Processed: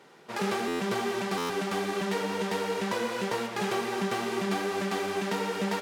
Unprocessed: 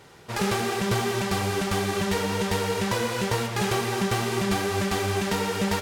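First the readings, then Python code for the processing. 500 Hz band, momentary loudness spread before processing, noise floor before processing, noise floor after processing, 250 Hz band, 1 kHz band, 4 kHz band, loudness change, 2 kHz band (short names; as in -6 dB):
-3.0 dB, 1 LU, -38 dBFS, -43 dBFS, -4.0 dB, -3.5 dB, -6.0 dB, -4.5 dB, -4.0 dB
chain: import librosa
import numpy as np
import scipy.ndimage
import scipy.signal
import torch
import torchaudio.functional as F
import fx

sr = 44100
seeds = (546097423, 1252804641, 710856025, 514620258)

y = scipy.signal.sosfilt(scipy.signal.butter(4, 180.0, 'highpass', fs=sr, output='sos'), x)
y = fx.high_shelf(y, sr, hz=4500.0, db=-7.5)
y = fx.buffer_glitch(y, sr, at_s=(0.67, 1.37), block=512, repeats=10)
y = y * 10.0 ** (-3.0 / 20.0)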